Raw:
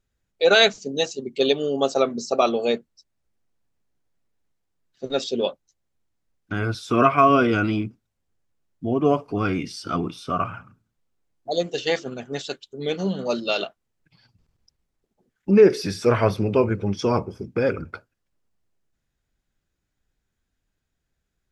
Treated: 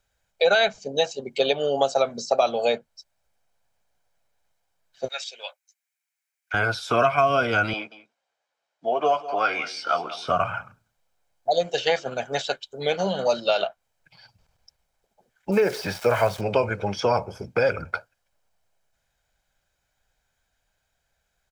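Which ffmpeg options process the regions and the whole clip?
ffmpeg -i in.wav -filter_complex "[0:a]asettb=1/sr,asplit=3[link_01][link_02][link_03];[link_01]atrim=end=5.084[link_04];[link_02]atrim=start=5.08:end=6.54,asetpts=PTS-STARTPTS,afade=type=in:duration=0.004:curve=qsin,afade=type=out:start_time=1.456:duration=0.004:curve=qsin,highpass=frequency=2300:width_type=q:width=3.1,equalizer=frequency=3100:width_type=o:width=1.6:gain=-14[link_05];[link_03]atrim=start=6.536[link_06];[link_04][link_05]acrossfade=duration=0.004:curve1=hsin:curve2=qsin[link_07];[link_07][link_06]acrossfade=duration=0.004:curve1=qsin:curve2=hsin,asettb=1/sr,asplit=3[link_08][link_09][link_10];[link_08]atrim=end=7.734[link_11];[link_09]atrim=start=7.73:end=10.28,asetpts=PTS-STARTPTS,afade=type=in:duration=0.004:curve=qsin,afade=type=out:start_time=2.546:duration=0.004:curve=qsin,highpass=470,lowpass=5400,asplit=2[link_12][link_13];[link_13]adelay=13,volume=-8dB[link_14];[link_12][link_14]amix=inputs=2:normalize=0,atrim=end_sample=112455,aecho=1:1:185:0.133,atrim=end_sample=112455[link_15];[link_10]atrim=start=10.276[link_16];[link_11][link_15]acrossfade=duration=0.004:curve1=hsin:curve2=qsin[link_17];[link_17][link_16]acrossfade=duration=0.004:curve1=qsin:curve2=hsin,asettb=1/sr,asplit=3[link_18][link_19][link_20];[link_18]atrim=end=15.524[link_21];[link_19]atrim=start=15.52:end=16.41,asetpts=PTS-STARTPTS,afade=type=in:duration=0.004:curve=qsin,afade=type=out:start_time=0.886:duration=0.004:curve=qsin,highshelf=frequency=4000:gain=-8.5,aeval=exprs='val(0)*gte(abs(val(0)),0.0141)':channel_layout=same[link_22];[link_20]atrim=start=16.406[link_23];[link_21][link_22]acrossfade=duration=0.004:curve1=hsin:curve2=qsin[link_24];[link_24][link_23]acrossfade=duration=0.004:curve1=qsin:curve2=hsin,lowshelf=frequency=400:width_type=q:width=1.5:gain=-9.5,aecho=1:1:1.3:0.39,acrossover=split=210|3200[link_25][link_26][link_27];[link_25]acompressor=threshold=-39dB:ratio=4[link_28];[link_26]acompressor=threshold=-26dB:ratio=4[link_29];[link_27]acompressor=threshold=-44dB:ratio=4[link_30];[link_28][link_29][link_30]amix=inputs=3:normalize=0,volume=7dB" out.wav

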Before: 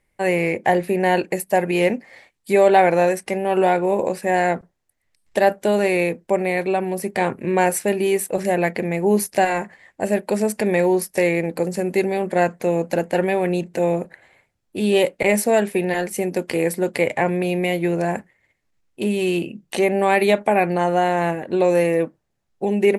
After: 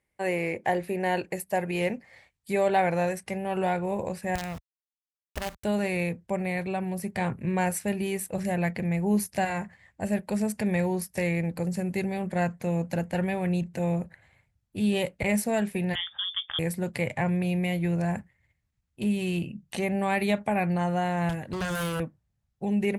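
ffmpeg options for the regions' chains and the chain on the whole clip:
ffmpeg -i in.wav -filter_complex "[0:a]asettb=1/sr,asplit=3[link_01][link_02][link_03];[link_01]atrim=end=4.354[link_04];[link_02]atrim=start=4.35:end=5.64,asetpts=PTS-STARTPTS,afade=type=in:duration=0.004:curve=qsin,afade=type=out:start_time=1.286:duration=0.004:curve=qsin,acrusher=bits=3:dc=4:mix=0:aa=0.000001,acompressor=threshold=-22dB:ratio=2.5:attack=3.2:release=140:knee=1:detection=peak[link_05];[link_03]atrim=start=5.636[link_06];[link_04][link_05]acrossfade=duration=0.004:curve1=hsin:curve2=qsin[link_07];[link_07][link_06]acrossfade=duration=0.004:curve1=qsin:curve2=hsin,asettb=1/sr,asplit=3[link_08][link_09][link_10];[link_08]atrim=end=15.954[link_11];[link_09]atrim=start=15.95:end=16.59,asetpts=PTS-STARTPTS,afade=type=in:duration=0.004:curve=qsin,afade=type=out:start_time=0.636:duration=0.004:curve=qsin,tremolo=f=210:d=0.261,lowpass=frequency=3100:width_type=q:width=0.5098,lowpass=frequency=3100:width_type=q:width=0.6013,lowpass=frequency=3100:width_type=q:width=0.9,lowpass=frequency=3100:width_type=q:width=2.563,afreqshift=-3700[link_12];[link_10]atrim=start=16.586[link_13];[link_11][link_12]acrossfade=duration=0.004:curve1=hsin:curve2=qsin[link_14];[link_14][link_13]acrossfade=duration=0.004:curve1=qsin:curve2=hsin,asettb=1/sr,asplit=3[link_15][link_16][link_17];[link_15]atrim=end=21.294[link_18];[link_16]atrim=start=21.29:end=22,asetpts=PTS-STARTPTS,afade=type=in:duration=0.004:curve=qsin,afade=type=out:start_time=0.706:duration=0.004:curve=qsin,highshelf=frequency=3400:gain=9,aeval=exprs='0.141*(abs(mod(val(0)/0.141+3,4)-2)-1)':channel_layout=same[link_19];[link_17]atrim=start=21.996[link_20];[link_18][link_19]acrossfade=duration=0.004:curve1=hsin:curve2=qsin[link_21];[link_21][link_20]acrossfade=duration=0.004:curve1=qsin:curve2=hsin,highpass=55,asubboost=boost=10.5:cutoff=110,volume=-8dB" out.wav

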